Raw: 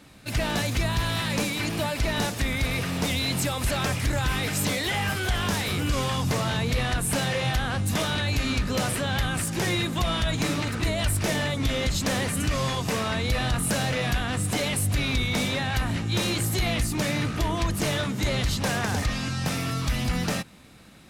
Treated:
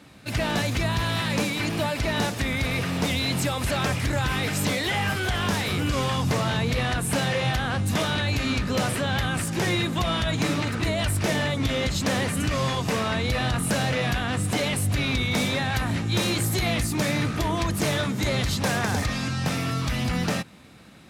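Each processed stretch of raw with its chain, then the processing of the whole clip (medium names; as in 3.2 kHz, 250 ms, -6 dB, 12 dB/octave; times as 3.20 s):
15.31–19.28 s: treble shelf 7.6 kHz +5 dB + band-stop 2.9 kHz, Q 24
whole clip: high-pass 69 Hz; treble shelf 5.7 kHz -5.5 dB; trim +2 dB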